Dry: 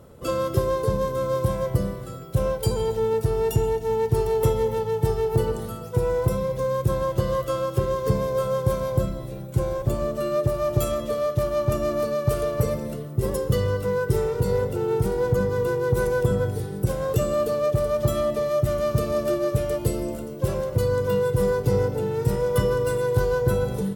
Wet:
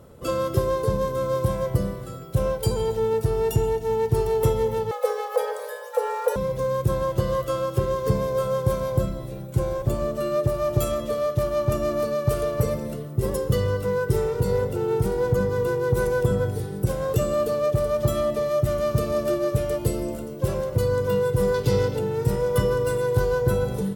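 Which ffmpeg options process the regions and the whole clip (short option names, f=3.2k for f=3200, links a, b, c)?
-filter_complex "[0:a]asettb=1/sr,asplit=3[a][b][c];[a]atrim=end=4.914[d];[b]atrim=start=4.91:end=6.36,asetpts=PTS-STARTPTS,afade=t=in:d=0.004:c=qsin,afade=t=out:st=1.446:d=0.004:c=qsin,equalizer=f=400:t=o:w=0.69:g=-12.5,afreqshift=380[e];[c]atrim=start=6.356[f];[d][e]acrossfade=d=0.004:c1=hsin:c2=qsin[g];[g][f]acrossfade=d=0.004:c1=qsin:c2=hsin,asettb=1/sr,asplit=3[h][i][j];[h]atrim=end=21.544[k];[i]atrim=start=21.54:end=21.99,asetpts=PTS-STARTPTS,afade=t=in:d=0.004:c=qsin,afade=t=out:st=0.446:d=0.004:c=qsin,equalizer=f=3.7k:w=0.85:g=10.5,bandreject=f=730:w=13[l];[j]atrim=start=21.986[m];[k][l]acrossfade=d=0.004:c1=hsin:c2=qsin[n];[n][m]acrossfade=d=0.004:c1=qsin:c2=hsin"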